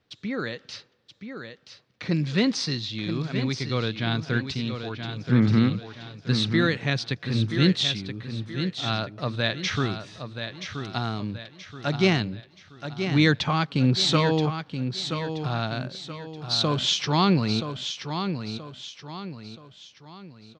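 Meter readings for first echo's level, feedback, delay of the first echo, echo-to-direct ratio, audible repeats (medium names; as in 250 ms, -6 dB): -8.0 dB, 40%, 977 ms, -7.0 dB, 4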